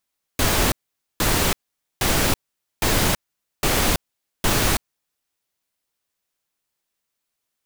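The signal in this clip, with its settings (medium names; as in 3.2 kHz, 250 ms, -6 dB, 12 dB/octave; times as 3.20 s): noise bursts pink, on 0.33 s, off 0.48 s, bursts 6, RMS -19 dBFS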